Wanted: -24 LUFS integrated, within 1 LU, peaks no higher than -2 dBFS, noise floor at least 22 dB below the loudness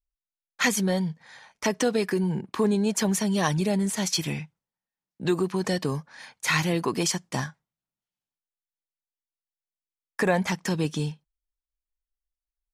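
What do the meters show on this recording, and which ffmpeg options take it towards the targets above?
loudness -26.5 LUFS; peak level -9.0 dBFS; loudness target -24.0 LUFS
-> -af "volume=1.33"

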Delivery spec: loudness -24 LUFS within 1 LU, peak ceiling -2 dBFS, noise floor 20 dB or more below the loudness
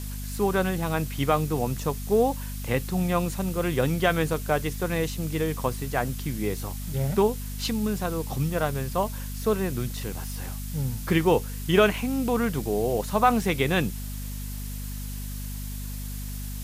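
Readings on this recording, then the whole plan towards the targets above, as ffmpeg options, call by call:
hum 50 Hz; highest harmonic 250 Hz; hum level -32 dBFS; noise floor -34 dBFS; noise floor target -47 dBFS; loudness -27.0 LUFS; peak level -7.0 dBFS; loudness target -24.0 LUFS
-> -af "bandreject=f=50:t=h:w=6,bandreject=f=100:t=h:w=6,bandreject=f=150:t=h:w=6,bandreject=f=200:t=h:w=6,bandreject=f=250:t=h:w=6"
-af "afftdn=nr=13:nf=-34"
-af "volume=1.41"

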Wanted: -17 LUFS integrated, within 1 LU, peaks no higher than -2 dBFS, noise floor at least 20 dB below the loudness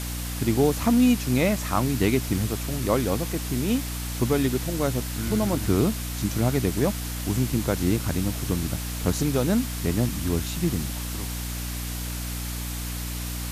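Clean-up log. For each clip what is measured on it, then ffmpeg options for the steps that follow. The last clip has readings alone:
hum 60 Hz; highest harmonic 300 Hz; hum level -29 dBFS; noise floor -31 dBFS; noise floor target -46 dBFS; loudness -25.5 LUFS; peak level -8.5 dBFS; loudness target -17.0 LUFS
-> -af "bandreject=f=60:t=h:w=4,bandreject=f=120:t=h:w=4,bandreject=f=180:t=h:w=4,bandreject=f=240:t=h:w=4,bandreject=f=300:t=h:w=4"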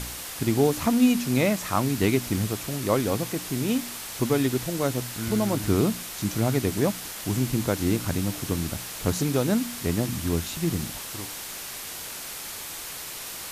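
hum not found; noise floor -37 dBFS; noise floor target -47 dBFS
-> -af "afftdn=nr=10:nf=-37"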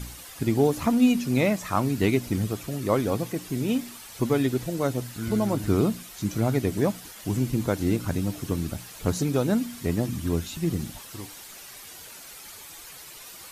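noise floor -44 dBFS; noise floor target -46 dBFS
-> -af "afftdn=nr=6:nf=-44"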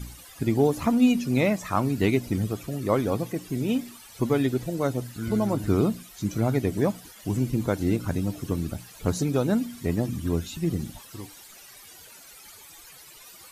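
noise floor -48 dBFS; loudness -26.5 LUFS; peak level -9.5 dBFS; loudness target -17.0 LUFS
-> -af "volume=2.99,alimiter=limit=0.794:level=0:latency=1"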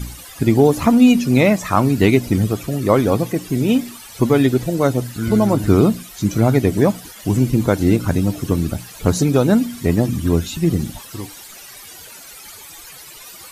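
loudness -17.0 LUFS; peak level -2.0 dBFS; noise floor -39 dBFS

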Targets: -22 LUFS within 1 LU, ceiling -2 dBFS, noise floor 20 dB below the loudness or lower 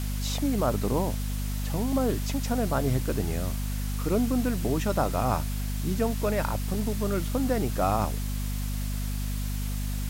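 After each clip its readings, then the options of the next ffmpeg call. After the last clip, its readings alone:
hum 50 Hz; highest harmonic 250 Hz; hum level -28 dBFS; noise floor -30 dBFS; noise floor target -49 dBFS; loudness -28.5 LUFS; peak level -12.0 dBFS; loudness target -22.0 LUFS
-> -af "bandreject=f=50:t=h:w=6,bandreject=f=100:t=h:w=6,bandreject=f=150:t=h:w=6,bandreject=f=200:t=h:w=6,bandreject=f=250:t=h:w=6"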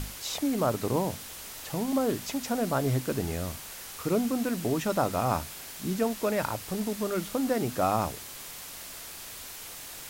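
hum not found; noise floor -43 dBFS; noise floor target -51 dBFS
-> -af "afftdn=nr=8:nf=-43"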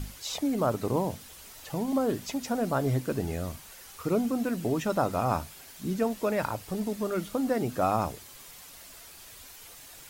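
noise floor -49 dBFS; noise floor target -50 dBFS
-> -af "afftdn=nr=6:nf=-49"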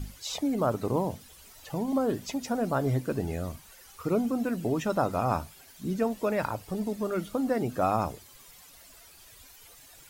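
noise floor -53 dBFS; loudness -30.0 LUFS; peak level -12.5 dBFS; loudness target -22.0 LUFS
-> -af "volume=2.51"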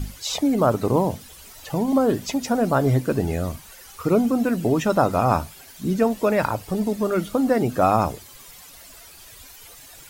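loudness -22.0 LUFS; peak level -4.5 dBFS; noise floor -45 dBFS

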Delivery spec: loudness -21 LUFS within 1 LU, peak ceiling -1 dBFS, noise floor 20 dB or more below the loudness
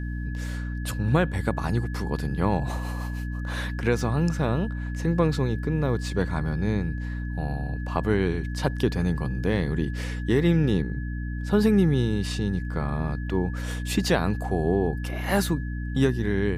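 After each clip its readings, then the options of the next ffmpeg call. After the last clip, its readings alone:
hum 60 Hz; highest harmonic 300 Hz; hum level -28 dBFS; steady tone 1.7 kHz; tone level -42 dBFS; loudness -26.5 LUFS; peak level -9.0 dBFS; loudness target -21.0 LUFS
-> -af "bandreject=f=60:t=h:w=6,bandreject=f=120:t=h:w=6,bandreject=f=180:t=h:w=6,bandreject=f=240:t=h:w=6,bandreject=f=300:t=h:w=6"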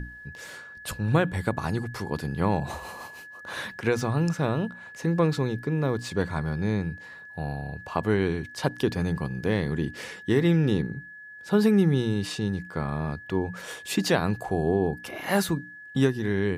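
hum not found; steady tone 1.7 kHz; tone level -42 dBFS
-> -af "bandreject=f=1700:w=30"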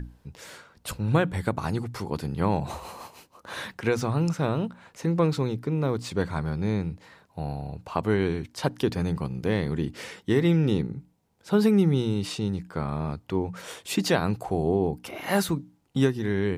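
steady tone not found; loudness -27.0 LUFS; peak level -9.0 dBFS; loudness target -21.0 LUFS
-> -af "volume=2"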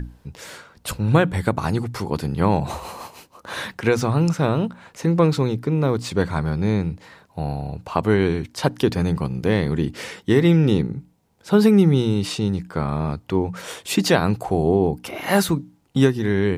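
loudness -21.0 LUFS; peak level -3.0 dBFS; noise floor -57 dBFS

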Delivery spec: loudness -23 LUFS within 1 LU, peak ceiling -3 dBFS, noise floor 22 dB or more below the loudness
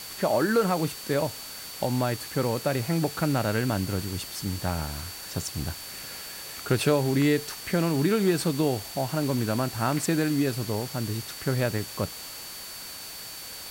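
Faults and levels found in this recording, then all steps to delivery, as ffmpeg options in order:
steady tone 4.5 kHz; tone level -43 dBFS; noise floor -40 dBFS; noise floor target -50 dBFS; loudness -28.0 LUFS; peak level -10.5 dBFS; loudness target -23.0 LUFS
-> -af "bandreject=f=4500:w=30"
-af "afftdn=nr=10:nf=-40"
-af "volume=1.78"

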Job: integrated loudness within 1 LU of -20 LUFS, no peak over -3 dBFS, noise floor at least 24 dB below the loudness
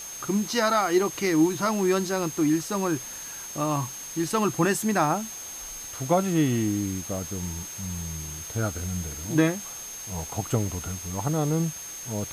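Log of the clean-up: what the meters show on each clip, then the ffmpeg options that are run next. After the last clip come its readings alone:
steady tone 6.4 kHz; tone level -37 dBFS; noise floor -38 dBFS; noise floor target -51 dBFS; loudness -27.0 LUFS; peak level -10.5 dBFS; loudness target -20.0 LUFS
-> -af "bandreject=f=6400:w=30"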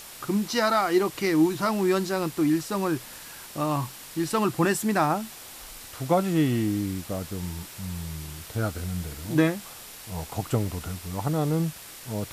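steady tone not found; noise floor -44 dBFS; noise floor target -51 dBFS
-> -af "afftdn=nr=7:nf=-44"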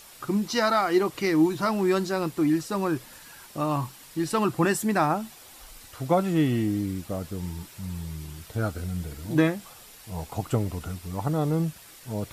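noise floor -49 dBFS; noise floor target -51 dBFS
-> -af "afftdn=nr=6:nf=-49"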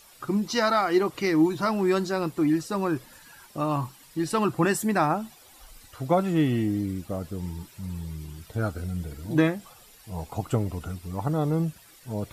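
noise floor -53 dBFS; loudness -27.0 LUFS; peak level -11.0 dBFS; loudness target -20.0 LUFS
-> -af "volume=2.24"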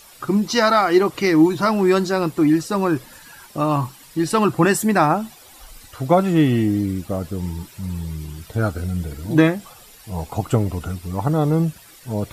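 loudness -20.0 LUFS; peak level -4.0 dBFS; noise floor -46 dBFS

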